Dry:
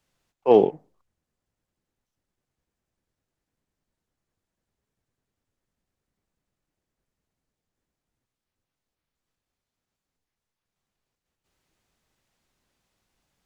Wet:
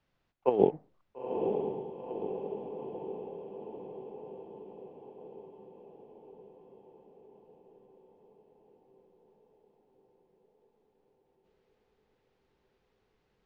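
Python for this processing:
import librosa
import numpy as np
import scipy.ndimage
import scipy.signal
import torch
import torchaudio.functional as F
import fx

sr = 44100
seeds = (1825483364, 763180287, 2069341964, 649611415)

y = fx.over_compress(x, sr, threshold_db=-18.0, ratio=-0.5)
y = fx.air_absorb(y, sr, metres=210.0)
y = fx.echo_diffused(y, sr, ms=935, feedback_pct=64, wet_db=-4.5)
y = y * 10.0 ** (-4.0 / 20.0)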